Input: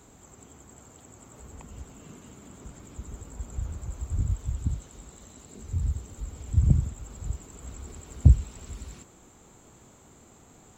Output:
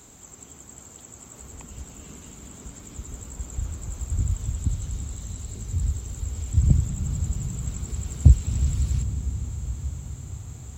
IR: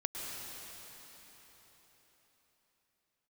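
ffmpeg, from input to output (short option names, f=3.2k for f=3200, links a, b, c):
-filter_complex "[0:a]highshelf=f=2.4k:g=10.5,asplit=2[a][b];[1:a]atrim=start_sample=2205,asetrate=24255,aresample=44100,lowshelf=f=450:g=11[c];[b][c]afir=irnorm=-1:irlink=0,volume=-16.5dB[d];[a][d]amix=inputs=2:normalize=0,volume=-2dB"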